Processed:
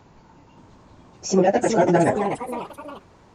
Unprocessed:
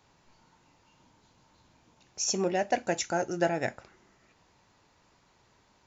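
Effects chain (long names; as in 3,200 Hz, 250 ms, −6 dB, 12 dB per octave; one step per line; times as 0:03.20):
time stretch by phase vocoder 0.57×
in parallel at −2 dB: brickwall limiter −29 dBFS, peak gain reduction 9 dB
on the sum: delay with pitch and tempo change per echo 576 ms, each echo +3 semitones, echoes 3, each echo −6 dB
tilt shelving filter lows +7 dB, about 1,400 Hz
level +7 dB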